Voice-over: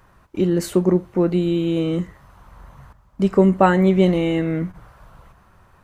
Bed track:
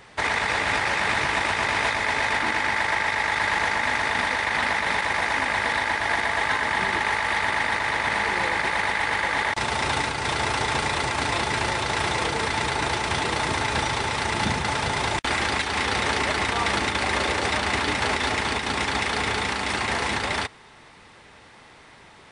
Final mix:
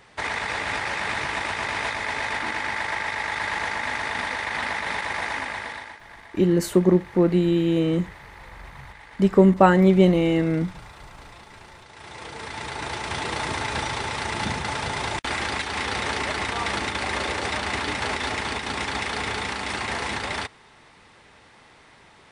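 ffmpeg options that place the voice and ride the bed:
-filter_complex "[0:a]adelay=6000,volume=-0.5dB[a];[1:a]volume=15dB,afade=t=out:st=5.28:d=0.72:silence=0.125893,afade=t=in:st=11.93:d=1.43:silence=0.112202[b];[a][b]amix=inputs=2:normalize=0"

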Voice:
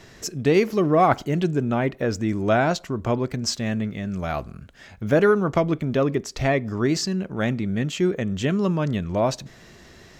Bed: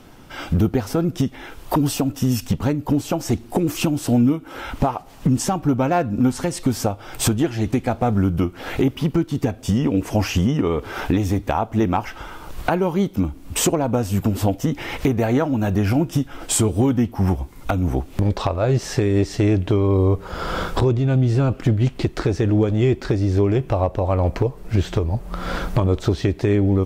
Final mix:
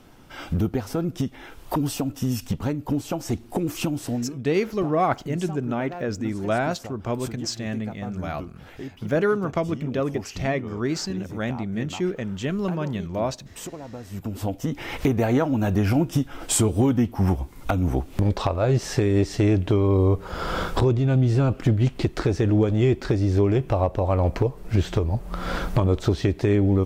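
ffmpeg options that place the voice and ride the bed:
-filter_complex "[0:a]adelay=4000,volume=-4dB[a];[1:a]volume=10dB,afade=t=out:st=3.97:d=0.34:silence=0.251189,afade=t=in:st=14.02:d=1.1:silence=0.16788[b];[a][b]amix=inputs=2:normalize=0"

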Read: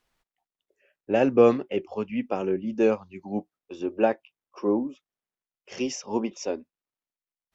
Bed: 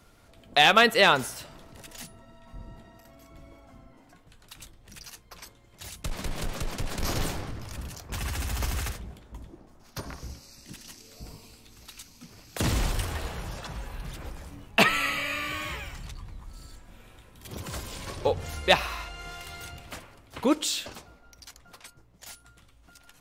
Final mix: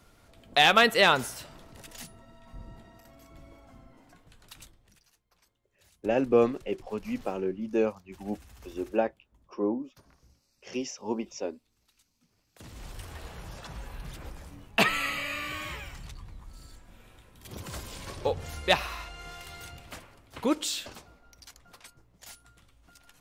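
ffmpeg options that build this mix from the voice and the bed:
-filter_complex "[0:a]adelay=4950,volume=-4.5dB[a];[1:a]volume=17dB,afade=t=out:st=4.5:d=0.51:silence=0.1,afade=t=in:st=12.72:d=1.15:silence=0.11885[b];[a][b]amix=inputs=2:normalize=0"

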